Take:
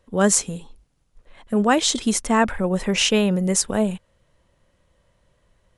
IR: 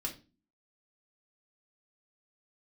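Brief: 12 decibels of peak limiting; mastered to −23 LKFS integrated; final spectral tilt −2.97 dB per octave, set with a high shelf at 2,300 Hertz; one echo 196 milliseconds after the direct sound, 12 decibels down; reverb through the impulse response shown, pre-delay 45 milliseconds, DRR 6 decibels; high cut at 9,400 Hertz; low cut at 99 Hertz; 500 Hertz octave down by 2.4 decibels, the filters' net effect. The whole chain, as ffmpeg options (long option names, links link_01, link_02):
-filter_complex "[0:a]highpass=99,lowpass=9400,equalizer=frequency=500:width_type=o:gain=-3.5,highshelf=frequency=2300:gain=8,alimiter=limit=-10dB:level=0:latency=1,aecho=1:1:196:0.251,asplit=2[link_01][link_02];[1:a]atrim=start_sample=2205,adelay=45[link_03];[link_02][link_03]afir=irnorm=-1:irlink=0,volume=-7dB[link_04];[link_01][link_04]amix=inputs=2:normalize=0,volume=-3dB"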